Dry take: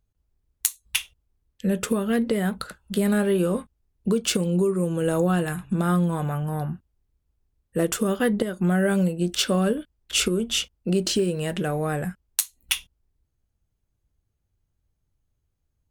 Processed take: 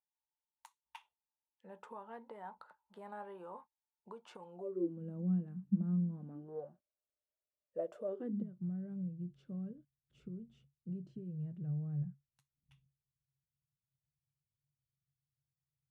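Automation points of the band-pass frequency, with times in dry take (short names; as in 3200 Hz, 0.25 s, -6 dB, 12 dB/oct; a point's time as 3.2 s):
band-pass, Q 14
4.52 s 900 Hz
5.01 s 200 Hz
6.18 s 200 Hz
6.7 s 600 Hz
8.05 s 600 Hz
8.52 s 140 Hz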